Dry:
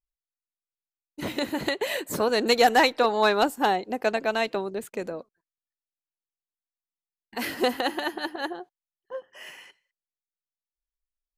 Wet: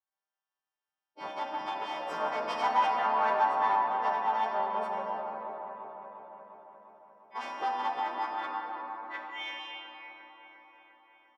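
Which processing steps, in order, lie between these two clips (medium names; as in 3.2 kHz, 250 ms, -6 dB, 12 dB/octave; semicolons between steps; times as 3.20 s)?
partials quantised in pitch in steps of 2 st; comb 5.3 ms, depth 35%; de-hum 69.94 Hz, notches 11; in parallel at +1 dB: compression, threshold -35 dBFS, peak gain reduction 20 dB; on the sum: formant shift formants +3 st; one-sided clip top -27 dBFS; band-pass sweep 970 Hz -> 2.3 kHz, 8.13–9.11 s; on a send: feedback echo behind a low-pass 351 ms, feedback 64%, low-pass 1.6 kHz, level -6 dB; on the sum: simulated room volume 200 m³, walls hard, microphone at 0.42 m; trim -2.5 dB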